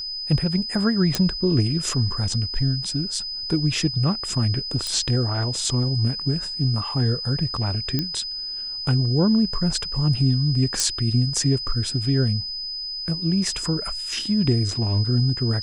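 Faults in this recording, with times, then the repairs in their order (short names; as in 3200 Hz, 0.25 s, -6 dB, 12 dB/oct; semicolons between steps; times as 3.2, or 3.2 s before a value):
tone 5000 Hz -28 dBFS
1.15 pop
4.87 pop -13 dBFS
7.99 pop -10 dBFS
10.8 pop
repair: de-click; notch 5000 Hz, Q 30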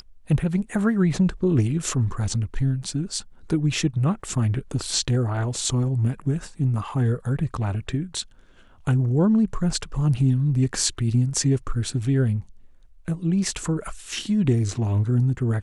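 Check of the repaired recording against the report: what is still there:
none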